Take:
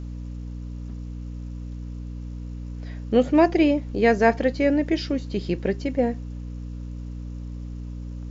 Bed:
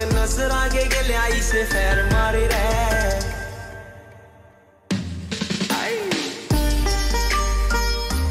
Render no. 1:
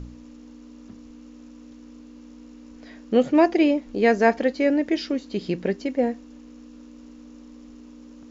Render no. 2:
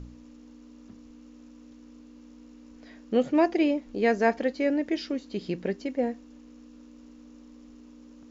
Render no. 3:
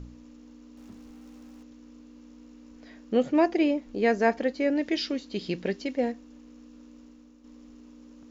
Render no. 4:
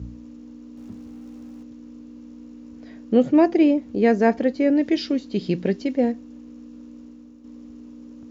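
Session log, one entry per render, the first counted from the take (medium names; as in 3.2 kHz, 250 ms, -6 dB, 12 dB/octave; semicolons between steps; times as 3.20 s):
de-hum 60 Hz, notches 3
trim -5 dB
0.77–1.63 s: jump at every zero crossing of -53.5 dBFS; 4.75–6.12 s: dynamic bell 4 kHz, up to +8 dB, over -53 dBFS, Q 0.72; 6.97–7.44 s: fade out linear, to -7.5 dB
high-pass 61 Hz 24 dB/octave; bass shelf 440 Hz +11.5 dB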